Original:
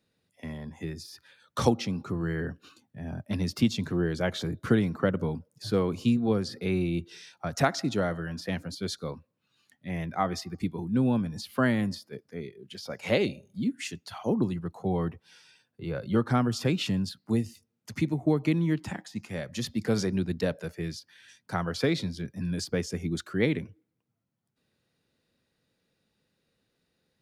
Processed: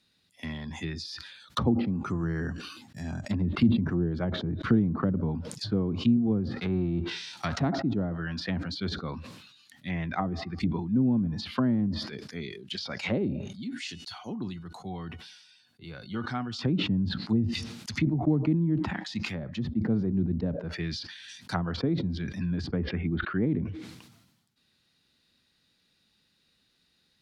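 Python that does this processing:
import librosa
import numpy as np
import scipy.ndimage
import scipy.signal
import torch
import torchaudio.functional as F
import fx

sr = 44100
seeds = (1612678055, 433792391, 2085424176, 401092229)

y = fx.resample_bad(x, sr, factor=6, down='filtered', up='hold', at=(1.63, 3.95))
y = fx.envelope_flatten(y, sr, power=0.6, at=(6.5, 7.69), fade=0.02)
y = fx.comb_fb(y, sr, f0_hz=730.0, decay_s=0.24, harmonics='all', damping=0.0, mix_pct=70, at=(13.48, 16.59))
y = fx.resample_bad(y, sr, factor=2, down='none', up='zero_stuff', at=(19.25, 20.52))
y = fx.cheby2_lowpass(y, sr, hz=6700.0, order=4, stop_db=50, at=(22.76, 23.47))
y = fx.graphic_eq(y, sr, hz=(125, 500, 4000), db=(-5, -10, 8))
y = fx.env_lowpass_down(y, sr, base_hz=470.0, full_db=-27.5)
y = fx.sustainer(y, sr, db_per_s=53.0)
y = y * librosa.db_to_amplitude(4.5)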